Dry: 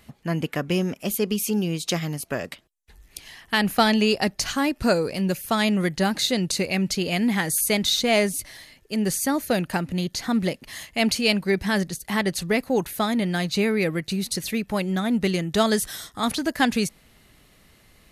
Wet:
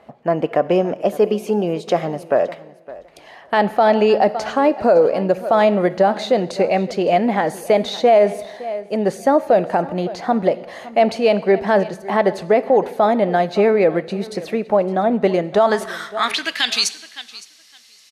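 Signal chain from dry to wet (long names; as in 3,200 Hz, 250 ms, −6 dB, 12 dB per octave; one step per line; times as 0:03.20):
0:14.54–0:15.23: de-essing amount 95%
band-pass filter sweep 640 Hz → 5,400 Hz, 0:15.51–0:16.94
repeating echo 562 ms, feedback 16%, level −19.5 dB
coupled-rooms reverb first 1 s, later 2.9 s, from −27 dB, DRR 15.5 dB
boost into a limiter +22 dB
level −4.5 dB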